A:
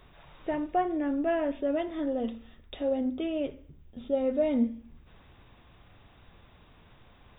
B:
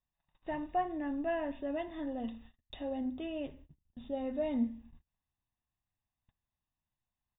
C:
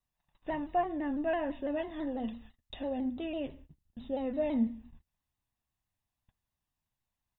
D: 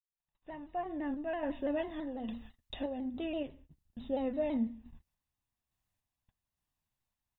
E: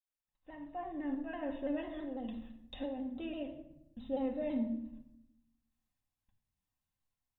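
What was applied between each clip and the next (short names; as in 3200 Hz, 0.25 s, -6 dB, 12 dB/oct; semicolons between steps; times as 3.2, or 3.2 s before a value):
gate -48 dBFS, range -32 dB; comb 1.1 ms, depth 55%; gain -6.5 dB
shaped vibrato saw down 6 Hz, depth 100 cents; gain +2.5 dB
opening faded in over 1.73 s; random-step tremolo; gain +2 dB
reverb RT60 0.80 s, pre-delay 4 ms, DRR 3 dB; gain -5.5 dB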